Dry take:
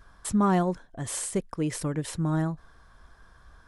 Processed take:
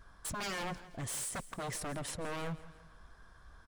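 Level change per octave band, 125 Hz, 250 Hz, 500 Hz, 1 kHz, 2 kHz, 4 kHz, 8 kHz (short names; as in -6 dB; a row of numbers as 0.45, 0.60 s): -14.5, -18.0, -11.5, -10.5, -1.5, -1.0, -5.5 dB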